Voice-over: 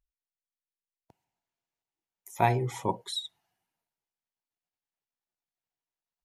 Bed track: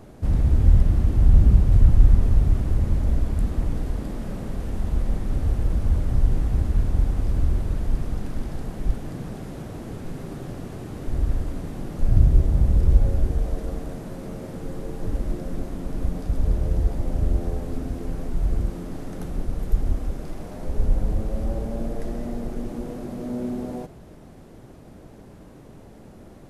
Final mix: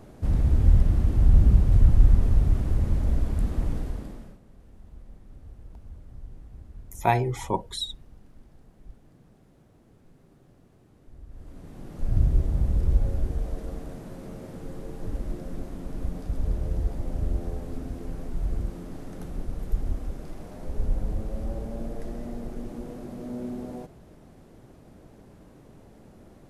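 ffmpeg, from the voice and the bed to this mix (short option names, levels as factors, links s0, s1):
-filter_complex "[0:a]adelay=4650,volume=1.33[s0];[1:a]volume=5.62,afade=t=out:st=3.71:d=0.68:silence=0.0944061,afade=t=in:st=11.3:d=0.93:silence=0.133352[s1];[s0][s1]amix=inputs=2:normalize=0"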